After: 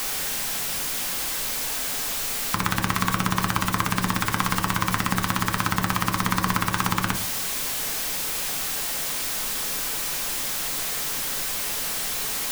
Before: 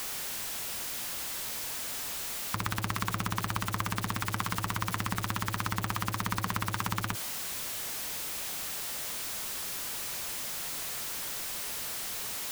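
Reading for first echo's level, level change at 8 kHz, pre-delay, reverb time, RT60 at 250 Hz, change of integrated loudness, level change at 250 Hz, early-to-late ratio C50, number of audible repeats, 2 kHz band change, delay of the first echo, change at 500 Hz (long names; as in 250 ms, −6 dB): no echo audible, +8.5 dB, 3 ms, 0.45 s, 0.60 s, +8.5 dB, +10.5 dB, 13.0 dB, no echo audible, +9.0 dB, no echo audible, +9.0 dB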